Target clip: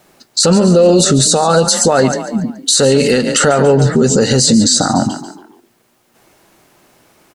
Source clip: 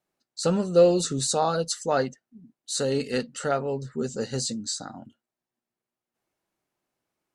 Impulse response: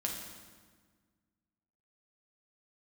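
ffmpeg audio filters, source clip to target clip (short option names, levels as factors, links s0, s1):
-filter_complex "[0:a]acompressor=threshold=0.0224:ratio=6,asplit=2[s0][s1];[s1]asplit=4[s2][s3][s4][s5];[s2]adelay=142,afreqshift=31,volume=0.178[s6];[s3]adelay=284,afreqshift=62,volume=0.0767[s7];[s4]adelay=426,afreqshift=93,volume=0.0327[s8];[s5]adelay=568,afreqshift=124,volume=0.0141[s9];[s6][s7][s8][s9]amix=inputs=4:normalize=0[s10];[s0][s10]amix=inputs=2:normalize=0,alimiter=level_in=44.7:limit=0.891:release=50:level=0:latency=1,volume=0.891"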